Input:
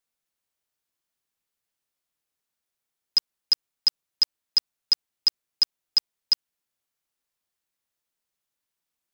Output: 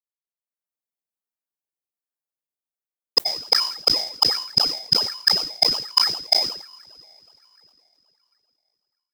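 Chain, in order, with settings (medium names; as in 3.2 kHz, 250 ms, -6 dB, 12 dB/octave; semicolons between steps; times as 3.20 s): expander -10 dBFS; treble shelf 8.8 kHz +11 dB; reverberation RT60 4.8 s, pre-delay 79 ms, DRR 18.5 dB; in parallel at -10 dB: decimation with a swept rate 21×, swing 100% 1.3 Hz; on the sum: level rider gain up to 14.5 dB; bass shelf 150 Hz -11.5 dB; decay stretcher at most 91 dB/s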